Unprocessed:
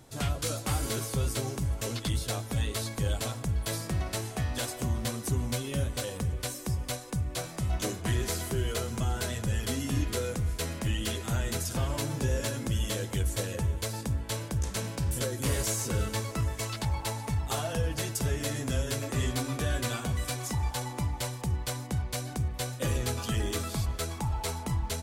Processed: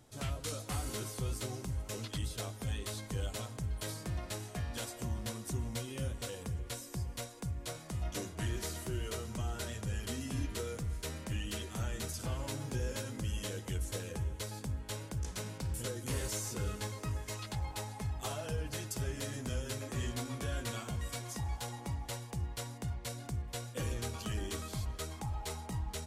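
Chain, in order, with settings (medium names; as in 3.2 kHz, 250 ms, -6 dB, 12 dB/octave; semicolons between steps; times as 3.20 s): speed mistake 25 fps video run at 24 fps; trim -7.5 dB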